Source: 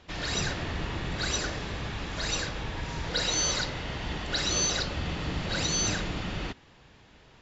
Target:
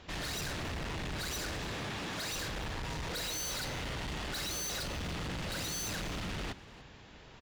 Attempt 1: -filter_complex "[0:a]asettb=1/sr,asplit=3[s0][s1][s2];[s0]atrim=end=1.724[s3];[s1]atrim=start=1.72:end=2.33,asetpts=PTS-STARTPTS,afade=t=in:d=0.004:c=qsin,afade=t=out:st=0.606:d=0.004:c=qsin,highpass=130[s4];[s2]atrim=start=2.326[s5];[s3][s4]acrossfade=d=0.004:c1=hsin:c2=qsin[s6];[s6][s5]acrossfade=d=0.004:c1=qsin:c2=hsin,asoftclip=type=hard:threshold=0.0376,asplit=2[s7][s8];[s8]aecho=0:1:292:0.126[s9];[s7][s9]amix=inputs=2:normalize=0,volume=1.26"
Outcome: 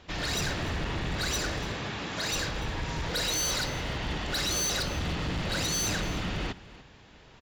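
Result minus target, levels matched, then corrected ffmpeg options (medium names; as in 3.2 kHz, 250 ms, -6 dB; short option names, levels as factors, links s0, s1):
hard clipper: distortion -6 dB
-filter_complex "[0:a]asettb=1/sr,asplit=3[s0][s1][s2];[s0]atrim=end=1.724[s3];[s1]atrim=start=1.72:end=2.33,asetpts=PTS-STARTPTS,afade=t=in:d=0.004:c=qsin,afade=t=out:st=0.606:d=0.004:c=qsin,highpass=130[s4];[s2]atrim=start=2.326[s5];[s3][s4]acrossfade=d=0.004:c1=hsin:c2=qsin[s6];[s6][s5]acrossfade=d=0.004:c1=qsin:c2=hsin,asoftclip=type=hard:threshold=0.0119,asplit=2[s7][s8];[s8]aecho=0:1:292:0.126[s9];[s7][s9]amix=inputs=2:normalize=0,volume=1.26"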